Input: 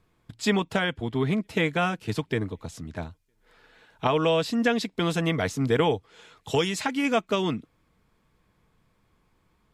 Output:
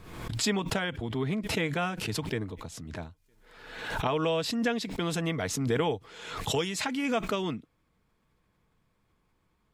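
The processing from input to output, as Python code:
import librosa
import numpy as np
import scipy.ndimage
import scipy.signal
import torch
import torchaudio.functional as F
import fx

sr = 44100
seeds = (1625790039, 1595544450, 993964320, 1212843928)

y = fx.pre_swell(x, sr, db_per_s=52.0)
y = F.gain(torch.from_numpy(y), -5.5).numpy()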